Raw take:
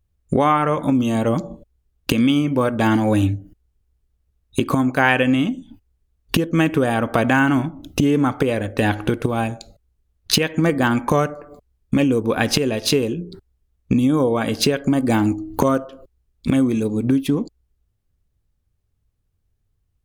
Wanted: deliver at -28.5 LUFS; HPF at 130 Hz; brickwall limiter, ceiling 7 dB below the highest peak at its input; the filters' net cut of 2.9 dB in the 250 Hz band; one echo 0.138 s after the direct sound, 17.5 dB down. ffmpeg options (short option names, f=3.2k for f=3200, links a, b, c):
-af "highpass=130,equalizer=f=250:t=o:g=-3,alimiter=limit=-8dB:level=0:latency=1,aecho=1:1:138:0.133,volume=-6.5dB"